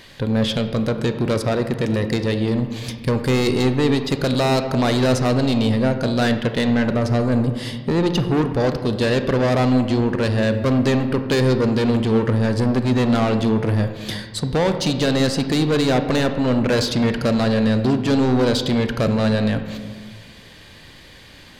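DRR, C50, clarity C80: 7.5 dB, 9.0 dB, 10.5 dB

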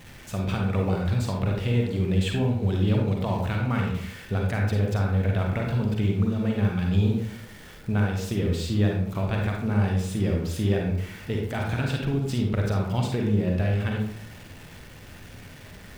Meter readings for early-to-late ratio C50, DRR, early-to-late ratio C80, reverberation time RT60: 2.0 dB, 0.0 dB, 6.0 dB, 0.70 s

